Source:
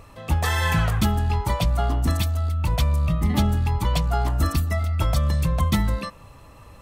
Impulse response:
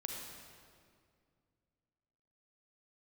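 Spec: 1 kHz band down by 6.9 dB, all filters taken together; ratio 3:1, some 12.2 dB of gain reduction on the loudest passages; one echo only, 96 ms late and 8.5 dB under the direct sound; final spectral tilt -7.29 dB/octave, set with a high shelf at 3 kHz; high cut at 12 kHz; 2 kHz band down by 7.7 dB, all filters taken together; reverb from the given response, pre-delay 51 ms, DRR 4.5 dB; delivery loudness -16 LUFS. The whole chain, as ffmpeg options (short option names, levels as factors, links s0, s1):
-filter_complex "[0:a]lowpass=12000,equalizer=f=1000:t=o:g=-7,equalizer=f=2000:t=o:g=-5,highshelf=f=3000:g=-6.5,acompressor=threshold=0.02:ratio=3,aecho=1:1:96:0.376,asplit=2[s0][s1];[1:a]atrim=start_sample=2205,adelay=51[s2];[s1][s2]afir=irnorm=-1:irlink=0,volume=0.631[s3];[s0][s3]amix=inputs=2:normalize=0,volume=5.96"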